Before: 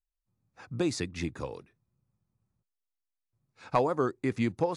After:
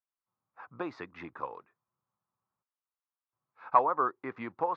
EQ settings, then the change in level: band-pass filter 1.1 kHz, Q 2.6; distance through air 240 m; +9.0 dB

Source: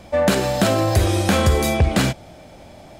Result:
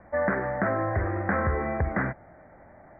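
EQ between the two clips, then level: steep low-pass 2 kHz 96 dB/octave; tilt shelf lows -7.5 dB, about 1.3 kHz; -3.5 dB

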